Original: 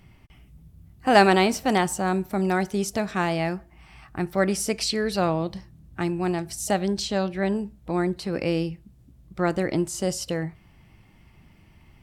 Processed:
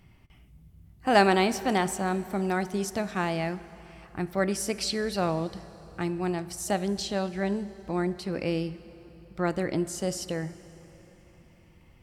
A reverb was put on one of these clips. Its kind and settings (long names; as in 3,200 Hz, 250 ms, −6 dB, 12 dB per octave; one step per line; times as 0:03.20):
dense smooth reverb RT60 4 s, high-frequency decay 0.8×, DRR 15 dB
level −4 dB